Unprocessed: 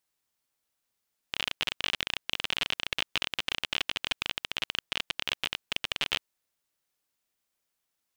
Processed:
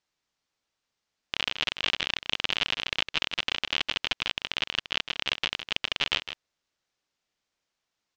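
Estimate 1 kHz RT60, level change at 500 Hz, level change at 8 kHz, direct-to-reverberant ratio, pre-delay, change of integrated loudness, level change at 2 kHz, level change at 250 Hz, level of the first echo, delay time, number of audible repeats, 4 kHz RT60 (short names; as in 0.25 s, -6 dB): none, +3.0 dB, -1.0 dB, none, none, +3.0 dB, +3.0 dB, +3.0 dB, -10.5 dB, 0.158 s, 1, none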